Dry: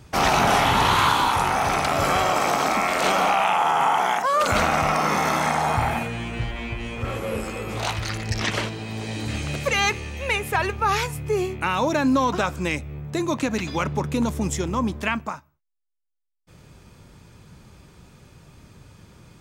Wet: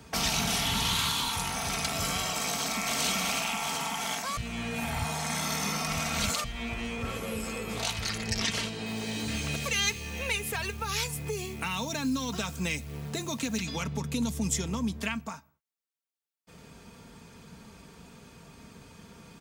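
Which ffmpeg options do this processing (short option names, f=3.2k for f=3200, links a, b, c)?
-filter_complex "[0:a]asplit=2[a][b];[b]afade=t=in:st=2.48:d=0.01,afade=t=out:st=3:d=0.01,aecho=0:1:380|760|1140|1520|1900|2280|2660|3040|3420|3800|4180|4560:0.841395|0.631046|0.473285|0.354964|0.266223|0.199667|0.14975|0.112313|0.0842345|0.0631759|0.0473819|0.0355364[c];[a][c]amix=inputs=2:normalize=0,asettb=1/sr,asplit=3[d][e][f];[d]atrim=end=8.864[g];[e]atrim=start=8.86:end=13.6,asetpts=PTS-STARTPTS,afade=t=in:d=0.004:c=qsin,afade=t=out:st=4.736:d=0.004:c=qsin,acrusher=bits=9:dc=4:mix=0:aa=0.000001[h];[f]atrim=start=13.596[i];[g][h]acrossfade=d=0.004:c1=hsin:c2=qsin[j];[j][i]acrossfade=d=0.004:c1=qsin:c2=hsin,asplit=3[k][l][m];[k]atrim=end=4.372[n];[l]atrim=start=4.368:end=6.442,asetpts=PTS-STARTPTS,areverse[o];[m]atrim=start=6.438[p];[n][o]acrossfade=d=0.004:c1=hsin:c2=hsin[q];[q][p]acrossfade=d=0.004:c1=hsin:c2=hsin,highpass=f=110:p=1,aecho=1:1:4.4:0.53,acrossover=split=170|3000[r][s][t];[s]acompressor=threshold=-35dB:ratio=8[u];[r][u][t]amix=inputs=3:normalize=0"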